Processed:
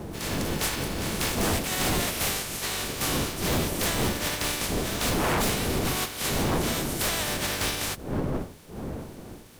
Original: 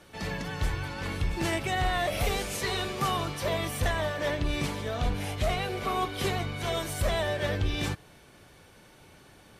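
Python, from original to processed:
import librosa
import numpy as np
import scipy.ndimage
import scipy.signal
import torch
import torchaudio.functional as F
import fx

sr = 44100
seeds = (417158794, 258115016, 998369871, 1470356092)

y = fx.spec_flatten(x, sr, power=0.3)
y = fx.dmg_wind(y, sr, seeds[0], corner_hz=360.0, level_db=-27.0)
y = 10.0 ** (-19.5 / 20.0) * (np.abs((y / 10.0 ** (-19.5 / 20.0) + 3.0) % 4.0 - 2.0) - 1.0)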